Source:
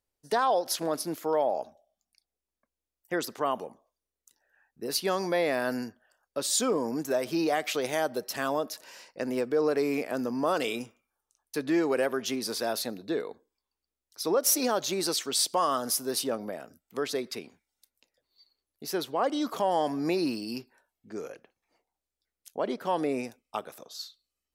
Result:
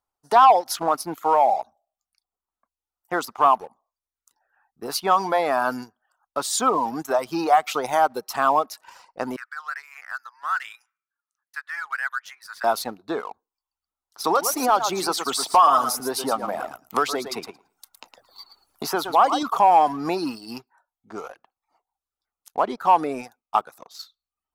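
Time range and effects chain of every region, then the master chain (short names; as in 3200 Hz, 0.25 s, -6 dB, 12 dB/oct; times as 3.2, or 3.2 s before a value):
9.36–12.64 ladder high-pass 1400 Hz, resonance 65% + bell 1900 Hz +9.5 dB 0.41 oct
14.24–19.43 feedback echo 0.111 s, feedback 18%, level -7 dB + three-band squash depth 70%
whole clip: reverb removal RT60 0.58 s; band shelf 1000 Hz +13.5 dB 1.2 oct; sample leveller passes 1; gain -1.5 dB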